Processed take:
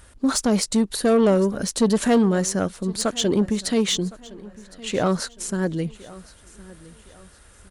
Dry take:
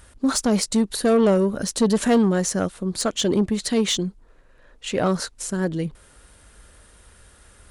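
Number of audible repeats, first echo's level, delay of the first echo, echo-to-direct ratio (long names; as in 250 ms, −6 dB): 2, −20.5 dB, 1,062 ms, −20.0 dB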